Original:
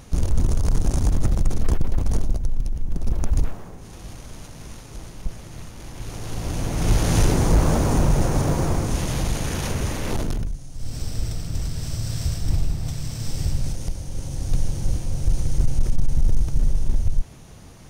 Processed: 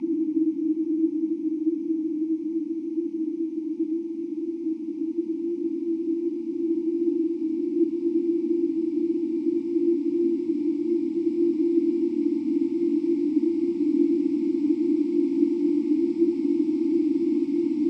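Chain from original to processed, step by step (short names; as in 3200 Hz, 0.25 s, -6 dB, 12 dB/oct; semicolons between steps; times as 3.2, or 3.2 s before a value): Paulstretch 38×, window 0.50 s, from 10.58; frequency shift -350 Hz; vowel filter u; gain +8 dB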